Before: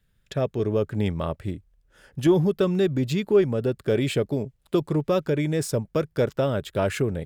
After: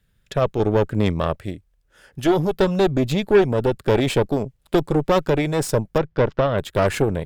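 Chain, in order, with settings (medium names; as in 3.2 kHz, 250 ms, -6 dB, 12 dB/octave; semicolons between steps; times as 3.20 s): 1.38–2.54 s: bass shelf 410 Hz -5.5 dB; Chebyshev shaper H 6 -16 dB, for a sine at -9 dBFS; 5.98–6.58 s: distance through air 200 m; trim +3.5 dB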